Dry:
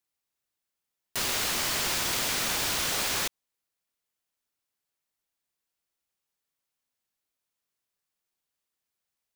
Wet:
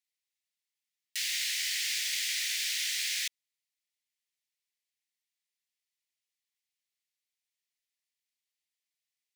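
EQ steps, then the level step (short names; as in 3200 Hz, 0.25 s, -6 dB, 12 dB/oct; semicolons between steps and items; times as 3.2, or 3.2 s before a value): elliptic high-pass 1900 Hz, stop band 50 dB; high shelf 10000 Hz -9 dB; 0.0 dB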